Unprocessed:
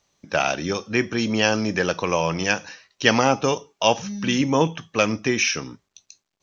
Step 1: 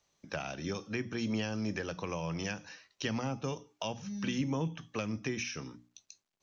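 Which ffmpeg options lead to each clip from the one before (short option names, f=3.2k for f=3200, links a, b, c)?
-filter_complex "[0:a]bandreject=f=60:t=h:w=6,bandreject=f=120:t=h:w=6,bandreject=f=180:t=h:w=6,bandreject=f=240:t=h:w=6,bandreject=f=300:t=h:w=6,acrossover=split=220[a][b];[b]acompressor=threshold=-29dB:ratio=6[c];[a][c]amix=inputs=2:normalize=0,volume=-7dB"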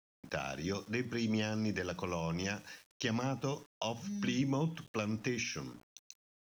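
-af "aeval=exprs='val(0)*gte(abs(val(0)),0.00188)':c=same"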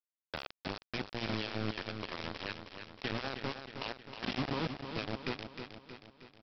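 -af "aresample=11025,acrusher=bits=4:mix=0:aa=0.000001,aresample=44100,aecho=1:1:315|630|945|1260|1575|1890:0.398|0.215|0.116|0.0627|0.0339|0.0183,volume=-4dB"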